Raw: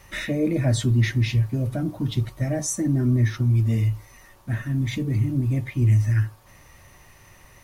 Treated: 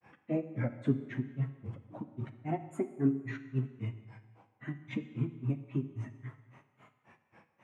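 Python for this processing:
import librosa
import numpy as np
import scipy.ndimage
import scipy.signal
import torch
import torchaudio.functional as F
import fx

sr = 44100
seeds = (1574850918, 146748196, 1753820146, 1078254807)

y = fx.cabinet(x, sr, low_hz=130.0, low_slope=24, high_hz=8200.0, hz=(230.0, 410.0, 880.0, 2000.0, 4400.0), db=(6, 3, 4, -6, -6))
y = fx.granulator(y, sr, seeds[0], grain_ms=165.0, per_s=3.7, spray_ms=29.0, spread_st=3)
y = fx.high_shelf_res(y, sr, hz=3300.0, db=-13.0, q=1.5)
y = fx.rev_plate(y, sr, seeds[1], rt60_s=1.3, hf_ratio=1.0, predelay_ms=0, drr_db=10.0)
y = y * 10.0 ** (-5.0 / 20.0)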